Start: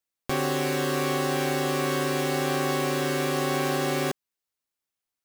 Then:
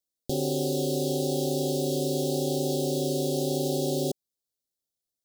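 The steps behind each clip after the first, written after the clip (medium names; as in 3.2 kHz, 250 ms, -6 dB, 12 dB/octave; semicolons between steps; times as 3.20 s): inverse Chebyshev band-stop 1.1–2.2 kHz, stop band 50 dB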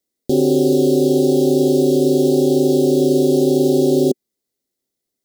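in parallel at +1 dB: peak limiter -26 dBFS, peak gain reduction 10 dB; on the sum: small resonant body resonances 250/370/2000 Hz, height 11 dB, ringing for 25 ms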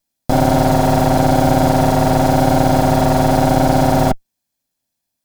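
comb filter that takes the minimum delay 1.2 ms; trim +4.5 dB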